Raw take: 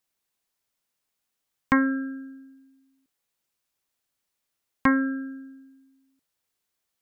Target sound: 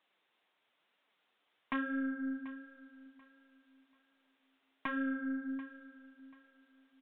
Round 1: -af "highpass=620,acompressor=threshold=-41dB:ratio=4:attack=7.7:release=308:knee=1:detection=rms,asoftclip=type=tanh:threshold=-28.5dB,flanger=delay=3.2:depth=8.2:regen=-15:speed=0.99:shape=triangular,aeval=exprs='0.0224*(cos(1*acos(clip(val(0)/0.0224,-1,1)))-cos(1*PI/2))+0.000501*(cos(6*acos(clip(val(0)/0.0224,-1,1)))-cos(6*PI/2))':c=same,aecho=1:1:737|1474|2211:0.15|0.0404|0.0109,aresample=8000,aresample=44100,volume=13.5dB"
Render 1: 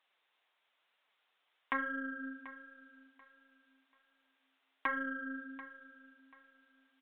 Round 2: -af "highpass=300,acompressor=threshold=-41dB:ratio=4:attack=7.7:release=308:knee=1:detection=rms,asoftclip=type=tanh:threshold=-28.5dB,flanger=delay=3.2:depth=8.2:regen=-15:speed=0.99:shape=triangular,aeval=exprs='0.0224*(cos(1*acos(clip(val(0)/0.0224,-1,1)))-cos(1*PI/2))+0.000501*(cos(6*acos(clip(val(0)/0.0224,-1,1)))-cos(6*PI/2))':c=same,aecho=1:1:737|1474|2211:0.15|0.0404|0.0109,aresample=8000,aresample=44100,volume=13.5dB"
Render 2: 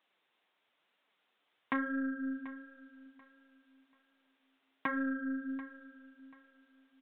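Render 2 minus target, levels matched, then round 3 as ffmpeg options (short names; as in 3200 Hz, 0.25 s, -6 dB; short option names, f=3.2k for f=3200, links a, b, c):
soft clip: distortion -6 dB
-af "highpass=300,acompressor=threshold=-41dB:ratio=4:attack=7.7:release=308:knee=1:detection=rms,asoftclip=type=tanh:threshold=-37dB,flanger=delay=3.2:depth=8.2:regen=-15:speed=0.99:shape=triangular,aeval=exprs='0.0224*(cos(1*acos(clip(val(0)/0.0224,-1,1)))-cos(1*PI/2))+0.000501*(cos(6*acos(clip(val(0)/0.0224,-1,1)))-cos(6*PI/2))':c=same,aecho=1:1:737|1474|2211:0.15|0.0404|0.0109,aresample=8000,aresample=44100,volume=13.5dB"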